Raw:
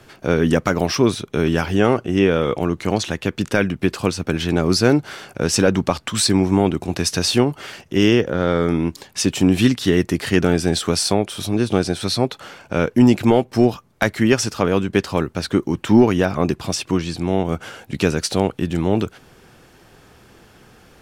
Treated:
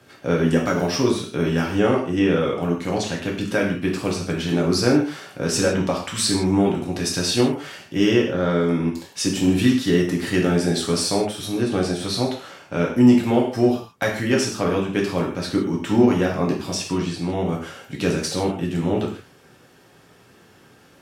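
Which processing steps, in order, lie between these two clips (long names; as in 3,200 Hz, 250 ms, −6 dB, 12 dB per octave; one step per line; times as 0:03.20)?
high-pass filter 77 Hz
reverb whose tail is shaped and stops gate 190 ms falling, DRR −1.5 dB
level −6.5 dB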